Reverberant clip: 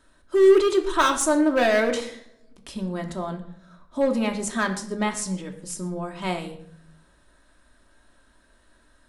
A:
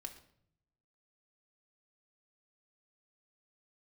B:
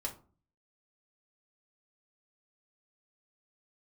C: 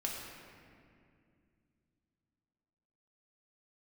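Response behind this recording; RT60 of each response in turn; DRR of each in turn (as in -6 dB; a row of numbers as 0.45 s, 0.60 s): A; 0.65 s, 0.40 s, 2.3 s; 3.0 dB, -1.0 dB, -2.5 dB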